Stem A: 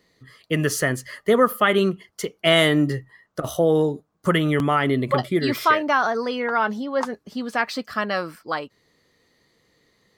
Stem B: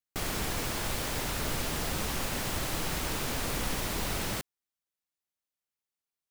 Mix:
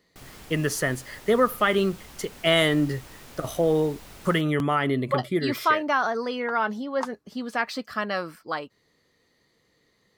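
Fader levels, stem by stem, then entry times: -3.5 dB, -13.5 dB; 0.00 s, 0.00 s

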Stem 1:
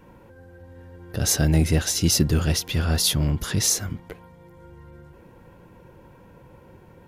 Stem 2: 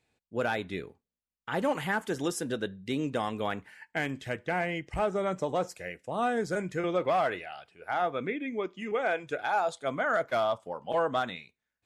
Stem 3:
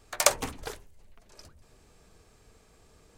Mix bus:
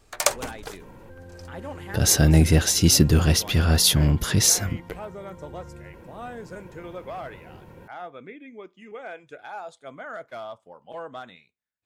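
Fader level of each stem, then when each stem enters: +3.0 dB, -9.0 dB, +0.5 dB; 0.80 s, 0.00 s, 0.00 s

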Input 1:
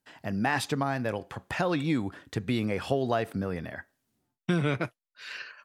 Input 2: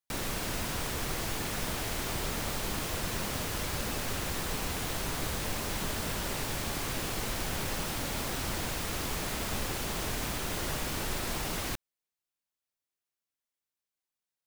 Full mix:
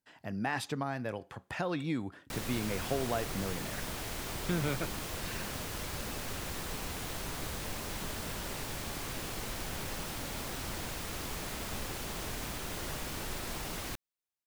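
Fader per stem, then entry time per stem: -6.5 dB, -5.0 dB; 0.00 s, 2.20 s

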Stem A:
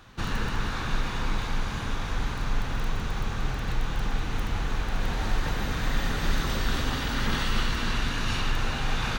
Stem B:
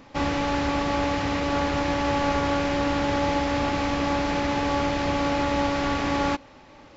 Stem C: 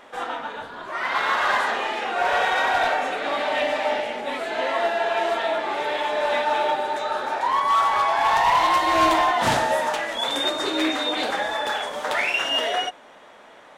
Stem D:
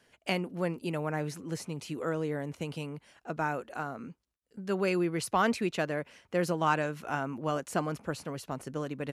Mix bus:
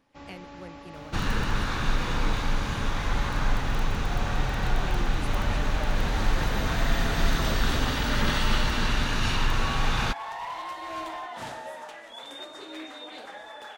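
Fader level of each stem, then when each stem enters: +2.0 dB, -20.0 dB, -17.0 dB, -13.0 dB; 0.95 s, 0.00 s, 1.95 s, 0.00 s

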